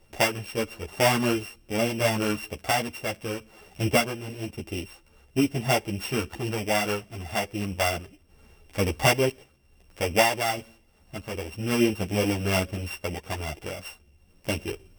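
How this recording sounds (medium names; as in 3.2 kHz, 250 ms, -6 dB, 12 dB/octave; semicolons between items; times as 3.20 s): a buzz of ramps at a fixed pitch in blocks of 16 samples; random-step tremolo; a shimmering, thickened sound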